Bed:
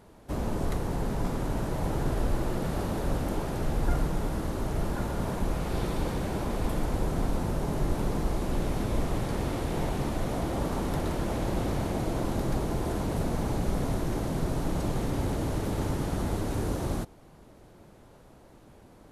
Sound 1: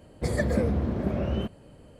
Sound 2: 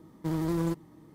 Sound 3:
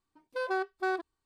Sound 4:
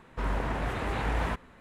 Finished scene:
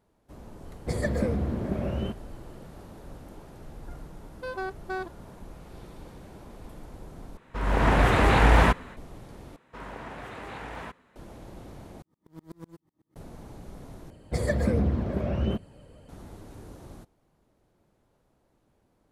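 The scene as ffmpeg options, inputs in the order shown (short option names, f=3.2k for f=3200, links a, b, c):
-filter_complex "[1:a]asplit=2[a][b];[4:a]asplit=2[c][d];[0:a]volume=-15.5dB[e];[c]dynaudnorm=f=260:g=3:m=15dB[f];[d]highpass=f=170:p=1[g];[2:a]aeval=exprs='val(0)*pow(10,-36*if(lt(mod(-8*n/s,1),2*abs(-8)/1000),1-mod(-8*n/s,1)/(2*abs(-8)/1000),(mod(-8*n/s,1)-2*abs(-8)/1000)/(1-2*abs(-8)/1000))/20)':c=same[h];[b]aphaser=in_gain=1:out_gain=1:delay=2.1:decay=0.3:speed=1.4:type=triangular[i];[e]asplit=5[j][k][l][m][n];[j]atrim=end=7.374[o];[f]atrim=end=1.6,asetpts=PTS-STARTPTS,volume=-2.5dB[p];[k]atrim=start=8.966:end=9.564[q];[g]atrim=end=1.6,asetpts=PTS-STARTPTS,volume=-6.5dB[r];[l]atrim=start=11.156:end=12.024[s];[h]atrim=end=1.14,asetpts=PTS-STARTPTS,volume=-8.5dB[t];[m]atrim=start=13.156:end=14.104[u];[i]atrim=end=1.99,asetpts=PTS-STARTPTS,volume=-1dB[v];[n]atrim=start=16.086[w];[a]atrim=end=1.99,asetpts=PTS-STARTPTS,volume=-2dB,afade=t=in:d=0.004:c=hsin,afade=t=out:st=1.986:d=0.004:c=hsin,adelay=650[x];[3:a]atrim=end=1.25,asetpts=PTS-STARTPTS,volume=-2.5dB,afade=t=in:d=0.004:c=hsin,afade=t=out:st=1.246:d=0.004:c=hsin,adelay=4070[y];[o][p]acrossfade=d=0.004:c1=hsin:c2=hsin[z];[z][q]acrossfade=d=0.004:c1=hsin:c2=hsin[aa];[aa][r]acrossfade=d=0.004:c1=hsin:c2=hsin[ab];[ab][s]acrossfade=d=0.004:c1=hsin:c2=hsin[ac];[ac][t]acrossfade=d=0.004:c1=hsin:c2=hsin[ad];[ad][u]acrossfade=d=0.004:c1=hsin:c2=hsin[ae];[ae][v]acrossfade=d=0.004:c1=hsin:c2=hsin[af];[af][w]acrossfade=d=0.004:c1=hsin:c2=hsin[ag];[ag][x][y]amix=inputs=3:normalize=0"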